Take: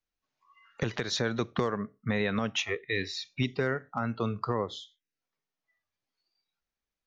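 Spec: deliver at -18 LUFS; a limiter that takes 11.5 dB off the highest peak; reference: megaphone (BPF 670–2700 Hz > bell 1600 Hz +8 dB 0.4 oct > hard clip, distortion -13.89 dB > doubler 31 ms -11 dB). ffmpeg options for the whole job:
-filter_complex "[0:a]alimiter=level_in=3.5dB:limit=-24dB:level=0:latency=1,volume=-3.5dB,highpass=670,lowpass=2.7k,equalizer=f=1.6k:t=o:w=0.4:g=8,asoftclip=type=hard:threshold=-35dB,asplit=2[a][b];[b]adelay=31,volume=-11dB[c];[a][c]amix=inputs=2:normalize=0,volume=24.5dB"

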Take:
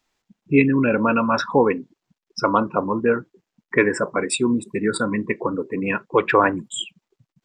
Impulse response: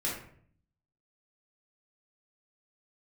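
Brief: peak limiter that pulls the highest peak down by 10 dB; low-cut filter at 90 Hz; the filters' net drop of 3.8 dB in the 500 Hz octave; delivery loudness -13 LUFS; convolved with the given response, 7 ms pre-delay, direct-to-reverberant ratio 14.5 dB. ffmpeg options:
-filter_complex "[0:a]highpass=90,equalizer=f=500:t=o:g=-4.5,alimiter=limit=-14dB:level=0:latency=1,asplit=2[a][b];[1:a]atrim=start_sample=2205,adelay=7[c];[b][c]afir=irnorm=-1:irlink=0,volume=-20dB[d];[a][d]amix=inputs=2:normalize=0,volume=12.5dB"

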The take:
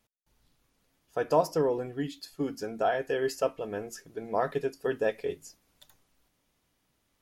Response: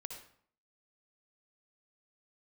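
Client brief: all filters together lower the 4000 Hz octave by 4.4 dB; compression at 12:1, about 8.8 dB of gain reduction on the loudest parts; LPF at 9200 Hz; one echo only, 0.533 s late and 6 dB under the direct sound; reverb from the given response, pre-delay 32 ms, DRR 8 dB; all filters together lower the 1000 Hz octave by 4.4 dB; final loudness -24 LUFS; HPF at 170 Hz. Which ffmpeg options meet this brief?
-filter_complex "[0:a]highpass=170,lowpass=9.2k,equalizer=f=1k:t=o:g=-6.5,equalizer=f=4k:t=o:g=-5.5,acompressor=threshold=-30dB:ratio=12,aecho=1:1:533:0.501,asplit=2[a][b];[1:a]atrim=start_sample=2205,adelay=32[c];[b][c]afir=irnorm=-1:irlink=0,volume=-5dB[d];[a][d]amix=inputs=2:normalize=0,volume=12.5dB"

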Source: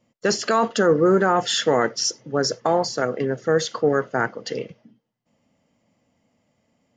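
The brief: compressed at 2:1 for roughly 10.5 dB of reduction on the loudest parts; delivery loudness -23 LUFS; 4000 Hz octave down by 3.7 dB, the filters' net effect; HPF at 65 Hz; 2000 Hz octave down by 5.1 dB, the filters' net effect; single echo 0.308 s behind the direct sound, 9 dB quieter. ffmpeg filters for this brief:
-af "highpass=65,equalizer=f=2k:t=o:g=-7,equalizer=f=4k:t=o:g=-3.5,acompressor=threshold=-33dB:ratio=2,aecho=1:1:308:0.355,volume=7.5dB"

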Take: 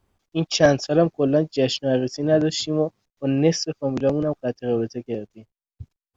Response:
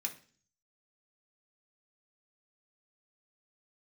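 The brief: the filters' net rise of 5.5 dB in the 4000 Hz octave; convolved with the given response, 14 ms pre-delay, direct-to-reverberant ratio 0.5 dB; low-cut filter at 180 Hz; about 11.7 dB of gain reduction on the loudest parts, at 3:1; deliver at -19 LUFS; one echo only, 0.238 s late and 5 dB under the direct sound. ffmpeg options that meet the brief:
-filter_complex "[0:a]highpass=180,equalizer=f=4k:t=o:g=7.5,acompressor=threshold=-26dB:ratio=3,aecho=1:1:238:0.562,asplit=2[a][b];[1:a]atrim=start_sample=2205,adelay=14[c];[b][c]afir=irnorm=-1:irlink=0,volume=-1dB[d];[a][d]amix=inputs=2:normalize=0,volume=7dB"

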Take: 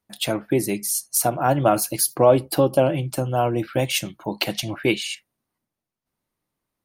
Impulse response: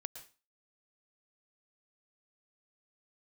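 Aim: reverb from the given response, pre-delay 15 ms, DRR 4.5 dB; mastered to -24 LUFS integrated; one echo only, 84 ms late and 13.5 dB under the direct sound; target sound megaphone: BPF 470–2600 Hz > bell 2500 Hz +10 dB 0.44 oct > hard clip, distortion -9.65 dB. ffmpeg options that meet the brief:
-filter_complex "[0:a]aecho=1:1:84:0.211,asplit=2[a][b];[1:a]atrim=start_sample=2205,adelay=15[c];[b][c]afir=irnorm=-1:irlink=0,volume=-1.5dB[d];[a][d]amix=inputs=2:normalize=0,highpass=470,lowpass=2.6k,equalizer=f=2.5k:t=o:w=0.44:g=10,asoftclip=type=hard:threshold=-16.5dB,volume=0.5dB"

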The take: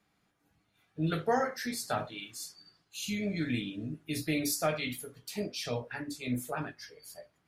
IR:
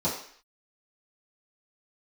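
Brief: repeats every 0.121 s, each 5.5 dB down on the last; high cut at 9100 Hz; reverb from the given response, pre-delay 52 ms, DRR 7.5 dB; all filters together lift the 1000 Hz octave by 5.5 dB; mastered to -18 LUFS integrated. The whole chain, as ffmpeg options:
-filter_complex "[0:a]lowpass=9.1k,equalizer=f=1k:t=o:g=8,aecho=1:1:121|242|363|484|605|726|847:0.531|0.281|0.149|0.079|0.0419|0.0222|0.0118,asplit=2[a][b];[1:a]atrim=start_sample=2205,adelay=52[c];[b][c]afir=irnorm=-1:irlink=0,volume=-17.5dB[d];[a][d]amix=inputs=2:normalize=0,volume=11.5dB"

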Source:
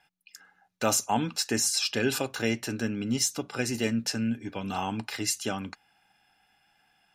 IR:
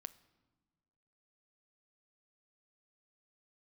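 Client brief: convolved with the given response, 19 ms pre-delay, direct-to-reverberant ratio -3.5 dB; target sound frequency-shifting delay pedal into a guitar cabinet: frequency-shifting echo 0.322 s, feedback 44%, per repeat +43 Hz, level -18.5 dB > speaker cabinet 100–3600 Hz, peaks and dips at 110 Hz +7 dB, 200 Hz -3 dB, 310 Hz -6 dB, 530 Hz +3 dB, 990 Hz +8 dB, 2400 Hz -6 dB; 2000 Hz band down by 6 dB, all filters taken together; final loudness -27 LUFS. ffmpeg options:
-filter_complex "[0:a]equalizer=f=2k:t=o:g=-6.5,asplit=2[a][b];[1:a]atrim=start_sample=2205,adelay=19[c];[b][c]afir=irnorm=-1:irlink=0,volume=8.5dB[d];[a][d]amix=inputs=2:normalize=0,asplit=5[e][f][g][h][i];[f]adelay=322,afreqshift=43,volume=-18.5dB[j];[g]adelay=644,afreqshift=86,volume=-25.6dB[k];[h]adelay=966,afreqshift=129,volume=-32.8dB[l];[i]adelay=1288,afreqshift=172,volume=-39.9dB[m];[e][j][k][l][m]amix=inputs=5:normalize=0,highpass=100,equalizer=f=110:t=q:w=4:g=7,equalizer=f=200:t=q:w=4:g=-3,equalizer=f=310:t=q:w=4:g=-6,equalizer=f=530:t=q:w=4:g=3,equalizer=f=990:t=q:w=4:g=8,equalizer=f=2.4k:t=q:w=4:g=-6,lowpass=f=3.6k:w=0.5412,lowpass=f=3.6k:w=1.3066"

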